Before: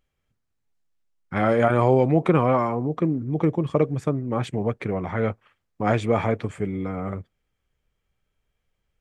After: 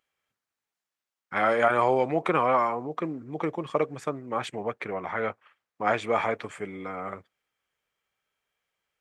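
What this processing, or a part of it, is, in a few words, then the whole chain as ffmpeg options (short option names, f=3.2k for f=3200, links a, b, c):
filter by subtraction: -filter_complex "[0:a]asettb=1/sr,asplit=3[a][b][c];[a]atrim=end=4.614[d];[b]atrim=start=4.61:end=6.05,asetpts=PTS-STARTPTS,afade=t=in:d=0.004:c=qsin,afade=t=out:st=1.436:d=0.004:c=qsin,highshelf=f=4.5k:g=-5[e];[c]atrim=start=6.046[f];[d][e]acrossfade=d=0.004:c1=hsin:c2=qsin[g];[g][f]acrossfade=d=0.004:c1=qsin:c2=hsin,asplit=2[h][i];[i]lowpass=1.2k,volume=-1[j];[h][j]amix=inputs=2:normalize=0"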